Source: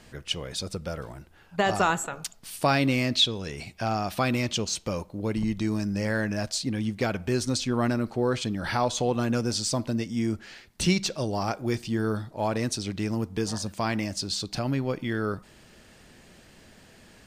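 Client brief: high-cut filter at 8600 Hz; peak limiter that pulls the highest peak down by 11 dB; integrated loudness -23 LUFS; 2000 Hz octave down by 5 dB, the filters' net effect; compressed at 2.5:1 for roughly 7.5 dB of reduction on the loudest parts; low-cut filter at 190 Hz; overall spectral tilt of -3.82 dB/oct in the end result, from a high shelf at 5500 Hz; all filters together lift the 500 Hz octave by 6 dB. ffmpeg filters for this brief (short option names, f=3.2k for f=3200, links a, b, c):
-af "highpass=190,lowpass=8.6k,equalizer=f=500:t=o:g=8,equalizer=f=2k:t=o:g=-8.5,highshelf=f=5.5k:g=7,acompressor=threshold=-27dB:ratio=2.5,volume=10dB,alimiter=limit=-13dB:level=0:latency=1"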